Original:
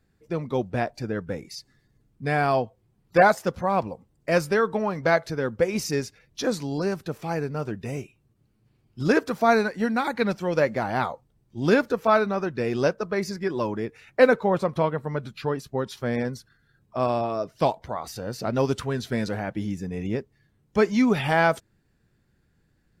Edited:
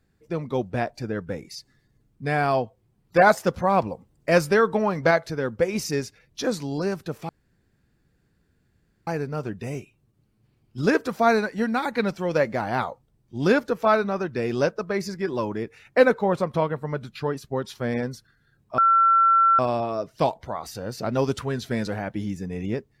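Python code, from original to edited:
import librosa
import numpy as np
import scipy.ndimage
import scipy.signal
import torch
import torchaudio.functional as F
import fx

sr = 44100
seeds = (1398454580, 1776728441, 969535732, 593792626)

y = fx.edit(x, sr, fx.clip_gain(start_s=3.27, length_s=1.84, db=3.0),
    fx.insert_room_tone(at_s=7.29, length_s=1.78),
    fx.insert_tone(at_s=17.0, length_s=0.81, hz=1350.0, db=-14.0), tone=tone)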